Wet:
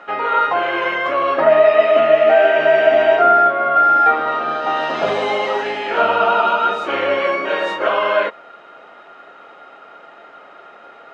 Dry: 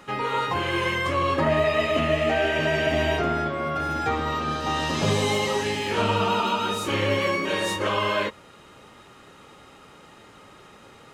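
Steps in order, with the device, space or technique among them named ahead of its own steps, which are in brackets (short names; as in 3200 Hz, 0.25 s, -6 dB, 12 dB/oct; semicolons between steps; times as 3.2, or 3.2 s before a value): tin-can telephone (BPF 410–2500 Hz; small resonant body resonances 680/1400 Hz, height 12 dB, ringing for 35 ms); gain +6 dB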